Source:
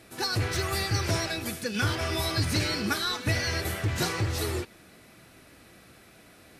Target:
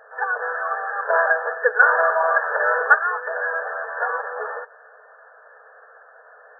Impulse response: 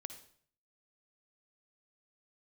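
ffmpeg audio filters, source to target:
-filter_complex "[0:a]aeval=exprs='0.188*(cos(1*acos(clip(val(0)/0.188,-1,1)))-cos(1*PI/2))+0.0119*(cos(5*acos(clip(val(0)/0.188,-1,1)))-cos(5*PI/2))':channel_layout=same,asettb=1/sr,asplit=3[link_01][link_02][link_03];[link_01]atrim=end=1.104[link_04];[link_02]atrim=start=1.1:end=2.95,asetpts=PTS-STARTPTS,afade=type=in:duration=0.004:curve=qsin,afade=type=out:start_time=1.846:duration=0.004:curve=qsin,acontrast=64[link_05];[link_03]atrim=start=2.946[link_06];[link_04][link_05]acrossfade=duration=0.004:curve1=hsin:curve2=qsin[link_07];[link_07][link_06]acrossfade=duration=0.004:curve1=qsin:curve2=hsin,afftfilt=real='re*between(b*sr/4096,430,1800)':imag='im*between(b*sr/4096,430,1800)':win_size=4096:overlap=0.75,crystalizer=i=6.5:c=0,volume=5.5dB"

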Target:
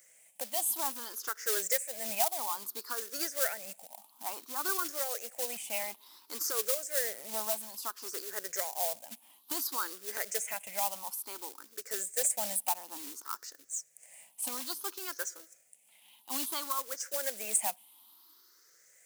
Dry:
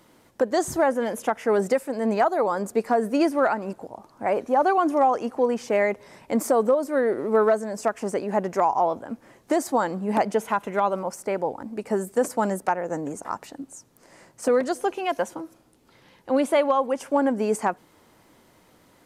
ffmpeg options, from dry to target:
ffmpeg -i in.wav -af "afftfilt=real='re*pow(10,18/40*sin(2*PI*(0.53*log(max(b,1)*sr/1024/100)/log(2)-(0.58)*(pts-256)/sr)))':imag='im*pow(10,18/40*sin(2*PI*(0.53*log(max(b,1)*sr/1024/100)/log(2)-(0.58)*(pts-256)/sr)))':win_size=1024:overlap=0.75,acrusher=bits=4:mode=log:mix=0:aa=0.000001,aderivative" out.wav

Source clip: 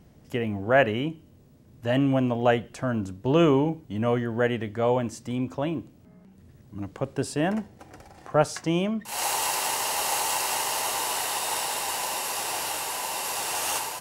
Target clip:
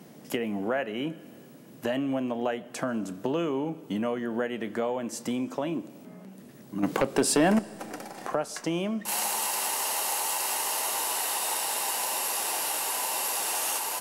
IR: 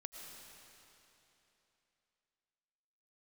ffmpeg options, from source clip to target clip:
-filter_complex "[0:a]highpass=frequency=180:width=0.5412,highpass=frequency=180:width=1.3066,equalizer=frequency=12000:width=1.1:gain=6.5,acompressor=threshold=-36dB:ratio=6,asettb=1/sr,asplit=3[link_01][link_02][link_03];[link_01]atrim=end=6.834[link_04];[link_02]atrim=start=6.83:end=7.59,asetpts=PTS-STARTPTS,afade=type=in:duration=0.004:curve=qsin,afade=type=out:start_time=0.756:duration=0.004:curve=qsin,aeval=exprs='0.0631*sin(PI/2*2*val(0)/0.0631)':channel_layout=same[link_05];[link_03]atrim=start=7.586[link_06];[link_04][link_05]acrossfade=duration=0.004:curve1=hsin:curve2=qsin[link_07];[link_07][link_06]acrossfade=duration=0.004:curve1=qsin:curve2=hsin,asplit=2[link_08][link_09];[1:a]atrim=start_sample=2205,adelay=30[link_10];[link_09][link_10]afir=irnorm=-1:irlink=0,volume=-13.5dB[link_11];[link_08][link_11]amix=inputs=2:normalize=0,volume=8.5dB"

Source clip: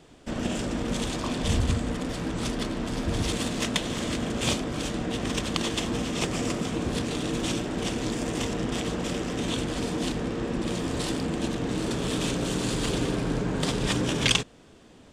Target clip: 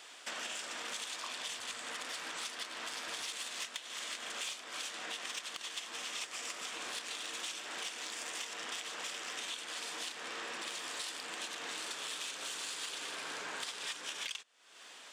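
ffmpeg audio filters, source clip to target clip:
ffmpeg -i in.wav -af "highpass=1300,acompressor=threshold=-47dB:ratio=8,asoftclip=type=tanh:threshold=-36dB,volume=8.5dB" out.wav

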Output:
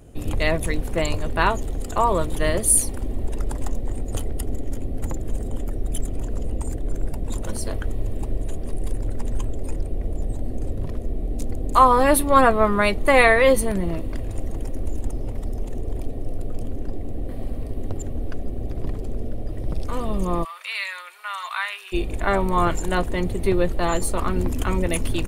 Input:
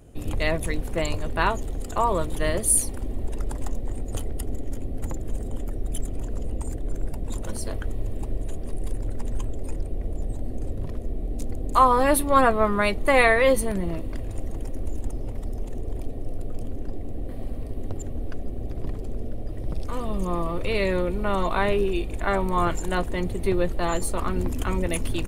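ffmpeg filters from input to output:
ffmpeg -i in.wav -filter_complex "[0:a]asplit=3[link_01][link_02][link_03];[link_01]afade=type=out:start_time=20.43:duration=0.02[link_04];[link_02]highpass=frequency=1200:width=0.5412,highpass=frequency=1200:width=1.3066,afade=type=in:start_time=20.43:duration=0.02,afade=type=out:start_time=21.92:duration=0.02[link_05];[link_03]afade=type=in:start_time=21.92:duration=0.02[link_06];[link_04][link_05][link_06]amix=inputs=3:normalize=0,volume=3dB" out.wav

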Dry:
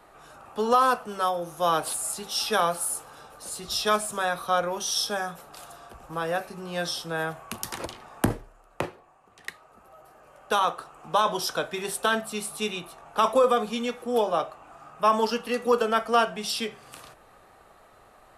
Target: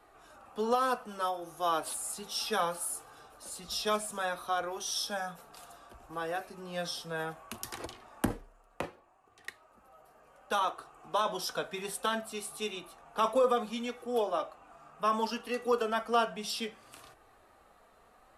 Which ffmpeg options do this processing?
ffmpeg -i in.wav -af "flanger=delay=2.6:depth=1.8:regen=-40:speed=0.64:shape=sinusoidal,volume=-3dB" out.wav

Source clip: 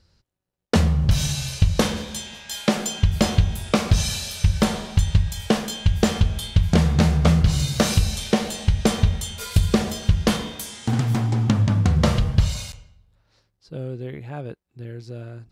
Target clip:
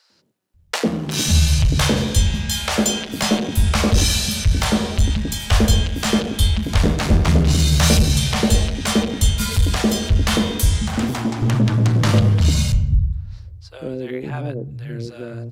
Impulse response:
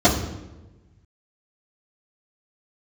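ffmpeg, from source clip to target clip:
-filter_complex "[0:a]asoftclip=type=tanh:threshold=-17.5dB,acrossover=split=170|640[link_01][link_02][link_03];[link_02]adelay=100[link_04];[link_01]adelay=540[link_05];[link_05][link_04][link_03]amix=inputs=3:normalize=0,asplit=2[link_06][link_07];[1:a]atrim=start_sample=2205[link_08];[link_07][link_08]afir=irnorm=-1:irlink=0,volume=-42dB[link_09];[link_06][link_09]amix=inputs=2:normalize=0,volume=8.5dB"

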